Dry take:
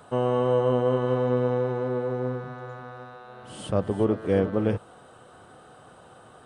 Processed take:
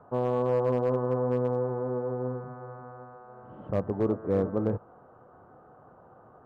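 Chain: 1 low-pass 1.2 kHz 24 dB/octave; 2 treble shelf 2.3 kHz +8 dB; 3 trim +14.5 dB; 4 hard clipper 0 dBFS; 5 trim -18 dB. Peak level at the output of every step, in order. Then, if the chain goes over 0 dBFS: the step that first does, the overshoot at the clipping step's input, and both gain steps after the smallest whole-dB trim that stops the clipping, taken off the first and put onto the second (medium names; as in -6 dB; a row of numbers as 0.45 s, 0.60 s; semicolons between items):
-11.0 dBFS, -10.5 dBFS, +4.0 dBFS, 0.0 dBFS, -18.0 dBFS; step 3, 4.0 dB; step 3 +10.5 dB, step 5 -14 dB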